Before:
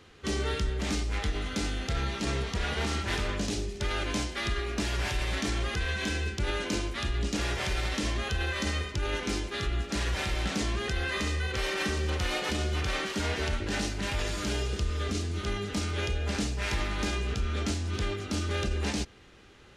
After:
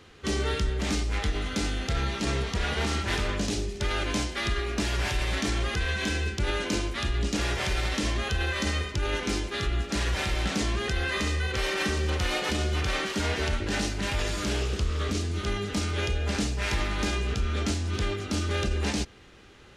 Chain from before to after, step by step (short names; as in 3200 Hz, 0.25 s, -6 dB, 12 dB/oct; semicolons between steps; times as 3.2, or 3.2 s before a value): 14.45–15.17 Doppler distortion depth 0.31 ms; gain +2.5 dB